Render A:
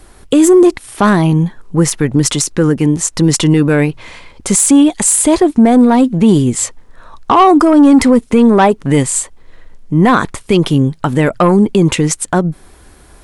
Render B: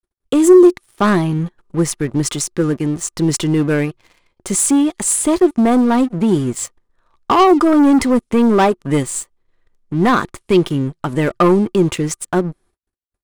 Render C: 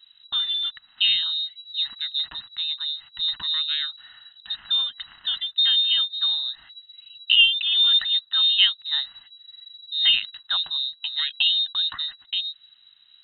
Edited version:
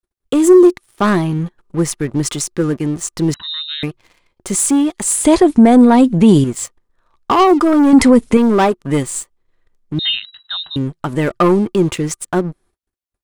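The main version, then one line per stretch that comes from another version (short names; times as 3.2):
B
3.34–3.83 from C
5.25–6.44 from A
7.93–8.37 from A
9.99–10.76 from C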